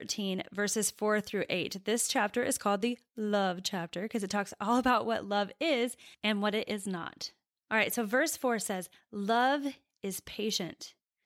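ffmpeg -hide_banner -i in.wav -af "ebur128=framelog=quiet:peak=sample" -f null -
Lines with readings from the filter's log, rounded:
Integrated loudness:
  I:         -31.7 LUFS
  Threshold: -41.9 LUFS
Loudness range:
  LRA:         1.3 LU
  Threshold: -51.8 LUFS
  LRA low:   -32.4 LUFS
  LRA high:  -31.2 LUFS
Sample peak:
  Peak:      -15.1 dBFS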